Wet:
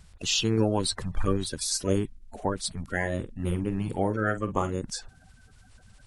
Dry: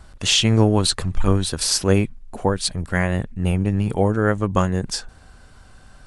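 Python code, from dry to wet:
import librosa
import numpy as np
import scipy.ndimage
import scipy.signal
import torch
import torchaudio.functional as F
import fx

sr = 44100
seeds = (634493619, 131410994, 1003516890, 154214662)

y = fx.spec_quant(x, sr, step_db=30)
y = fx.doubler(y, sr, ms=46.0, db=-11.0, at=(3.0, 4.74))
y = y * librosa.db_to_amplitude(-8.0)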